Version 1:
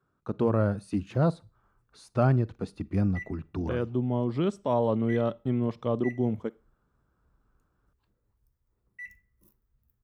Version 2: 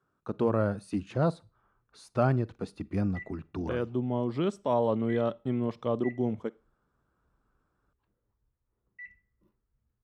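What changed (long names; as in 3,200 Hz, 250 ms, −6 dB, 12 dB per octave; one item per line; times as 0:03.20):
background: add high-frequency loss of the air 340 metres
master: add low-shelf EQ 170 Hz −6.5 dB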